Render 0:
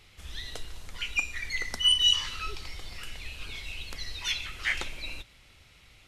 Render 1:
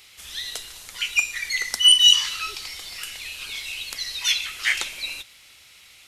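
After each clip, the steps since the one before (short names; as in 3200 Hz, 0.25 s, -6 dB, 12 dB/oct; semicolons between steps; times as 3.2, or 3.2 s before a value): tilt +3.5 dB/oct; gain +3 dB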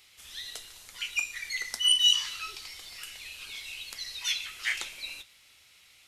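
flange 0.45 Hz, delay 7.8 ms, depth 2.5 ms, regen -71%; gain -4 dB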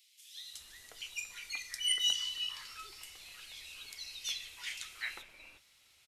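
bands offset in time highs, lows 0.36 s, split 2400 Hz; gain -6 dB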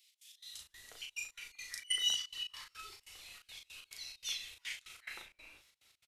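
step gate "x.x.xx.xxx." 142 bpm -24 dB; doubler 37 ms -4 dB; gain -2.5 dB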